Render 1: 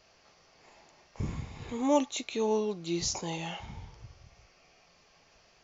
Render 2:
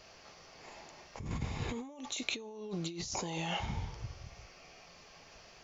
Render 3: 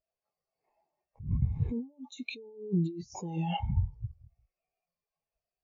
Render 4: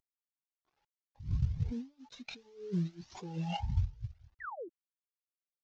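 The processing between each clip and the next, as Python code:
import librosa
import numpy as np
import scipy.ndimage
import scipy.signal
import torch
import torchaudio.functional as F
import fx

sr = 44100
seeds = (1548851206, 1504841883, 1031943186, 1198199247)

y1 = fx.over_compress(x, sr, threshold_db=-40.0, ratio=-1.0)
y2 = fx.spectral_expand(y1, sr, expansion=2.5)
y3 = fx.cvsd(y2, sr, bps=32000)
y3 = fx.spec_paint(y3, sr, seeds[0], shape='fall', start_s=4.4, length_s=0.29, low_hz=300.0, high_hz=2000.0, level_db=-38.0)
y3 = fx.comb_cascade(y3, sr, direction='rising', hz=1.6)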